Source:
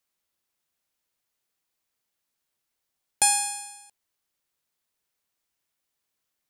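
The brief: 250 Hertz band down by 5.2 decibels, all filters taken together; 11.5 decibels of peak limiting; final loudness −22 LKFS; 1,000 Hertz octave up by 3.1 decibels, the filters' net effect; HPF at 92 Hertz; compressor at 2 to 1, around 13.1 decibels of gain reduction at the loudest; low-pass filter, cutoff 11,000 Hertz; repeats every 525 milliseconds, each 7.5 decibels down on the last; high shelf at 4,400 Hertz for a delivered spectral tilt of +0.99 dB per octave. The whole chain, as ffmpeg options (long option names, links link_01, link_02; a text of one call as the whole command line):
ffmpeg -i in.wav -af "highpass=92,lowpass=11000,equalizer=frequency=250:width_type=o:gain=-7.5,equalizer=frequency=1000:width_type=o:gain=5,highshelf=frequency=4400:gain=-6,acompressor=threshold=-43dB:ratio=2,alimiter=level_in=4dB:limit=-24dB:level=0:latency=1,volume=-4dB,aecho=1:1:525|1050|1575|2100|2625:0.422|0.177|0.0744|0.0312|0.0131,volume=21.5dB" out.wav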